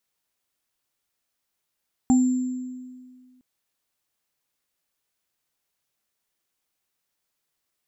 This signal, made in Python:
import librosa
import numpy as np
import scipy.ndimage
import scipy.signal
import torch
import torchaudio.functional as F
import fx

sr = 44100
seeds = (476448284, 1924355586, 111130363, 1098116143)

y = fx.additive_free(sr, length_s=1.31, hz=253.0, level_db=-13, upper_db=(-10.5, -18.0), decay_s=1.86, upper_decays_s=(0.21, 1.19), upper_hz=(780.0, 7360.0))